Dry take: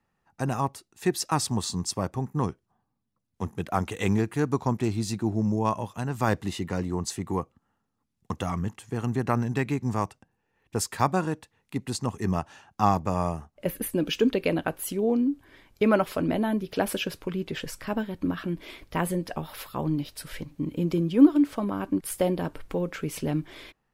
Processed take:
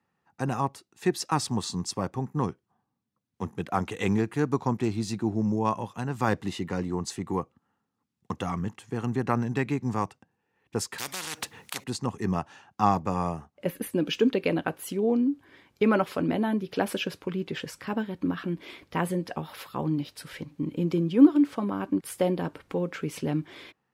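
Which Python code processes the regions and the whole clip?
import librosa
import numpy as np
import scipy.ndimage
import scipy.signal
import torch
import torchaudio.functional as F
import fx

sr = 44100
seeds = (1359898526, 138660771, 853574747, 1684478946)

y = fx.chain(x, sr, fx.high_shelf(hz=5900.0, db=8.5),
    fx.spectral_comp(ratio=10.0), at=(10.98, 11.84))
y = scipy.signal.sosfilt(scipy.signal.butter(2, 110.0, 'highpass', fs=sr, output='sos'), y)
y = fx.high_shelf(y, sr, hz=8700.0, db=-9.5)
y = fx.notch(y, sr, hz=630.0, q=12.0)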